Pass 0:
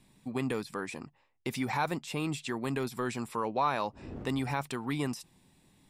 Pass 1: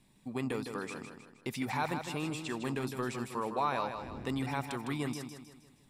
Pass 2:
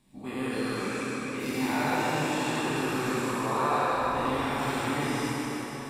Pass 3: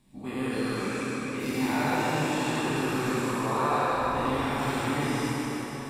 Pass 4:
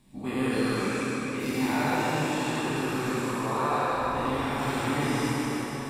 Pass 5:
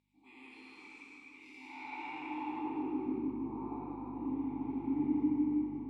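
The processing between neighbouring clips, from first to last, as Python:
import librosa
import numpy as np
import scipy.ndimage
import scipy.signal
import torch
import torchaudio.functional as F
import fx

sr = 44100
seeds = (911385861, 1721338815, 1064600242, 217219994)

y1 = fx.echo_feedback(x, sr, ms=157, feedback_pct=45, wet_db=-7.5)
y1 = F.gain(torch.from_numpy(y1), -3.0).numpy()
y2 = fx.spec_dilate(y1, sr, span_ms=240)
y2 = fx.rev_plate(y2, sr, seeds[0], rt60_s=4.8, hf_ratio=0.8, predelay_ms=0, drr_db=-7.0)
y2 = F.gain(torch.from_numpy(y2), -7.0).numpy()
y3 = fx.low_shelf(y2, sr, hz=210.0, db=4.0)
y4 = fx.rider(y3, sr, range_db=4, speed_s=2.0)
y5 = fx.vowel_filter(y4, sr, vowel='u')
y5 = fx.add_hum(y5, sr, base_hz=50, snr_db=15)
y5 = fx.filter_sweep_bandpass(y5, sr, from_hz=6200.0, to_hz=200.0, start_s=1.65, end_s=3.38, q=0.74)
y5 = F.gain(torch.from_numpy(y5), 3.5).numpy()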